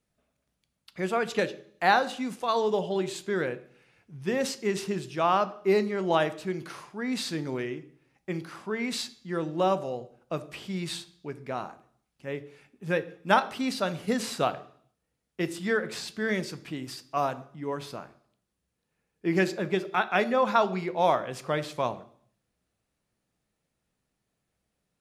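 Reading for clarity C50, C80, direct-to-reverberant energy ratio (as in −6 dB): 16.5 dB, 19.5 dB, 12.0 dB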